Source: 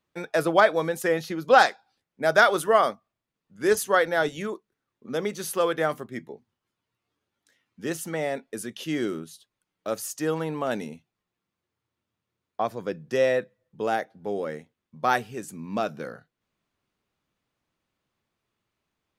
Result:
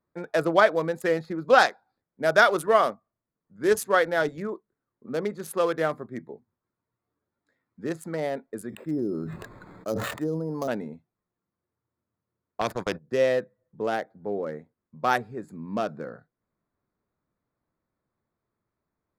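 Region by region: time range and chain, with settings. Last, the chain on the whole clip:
0:08.69–0:10.68: treble cut that deepens with the level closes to 420 Hz, closed at −23 dBFS + bad sample-rate conversion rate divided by 8×, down filtered, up hold + level that may fall only so fast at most 27 dB per second
0:12.61–0:13.12: noise gate −39 dBFS, range −27 dB + parametric band 520 Hz +4 dB 1.2 octaves + every bin compressed towards the loudest bin 2 to 1
whole clip: adaptive Wiener filter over 15 samples; notch filter 800 Hz, Q 21

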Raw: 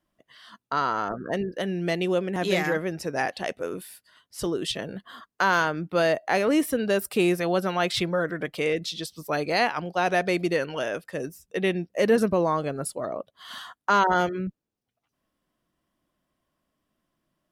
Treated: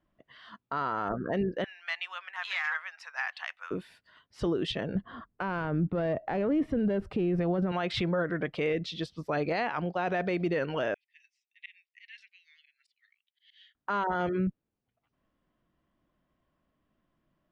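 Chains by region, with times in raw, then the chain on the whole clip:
0:01.64–0:03.71: Butterworth high-pass 1,000 Hz + log-companded quantiser 8 bits
0:04.95–0:07.72: phase distortion by the signal itself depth 0.062 ms + spectral tilt −3.5 dB per octave
0:10.94–0:13.75: Butterworth high-pass 2,000 Hz 72 dB per octave + head-to-tape spacing loss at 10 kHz 23 dB + volume swells 145 ms
whole clip: low-pass filter 2,900 Hz 12 dB per octave; low-shelf EQ 140 Hz +5.5 dB; brickwall limiter −21 dBFS

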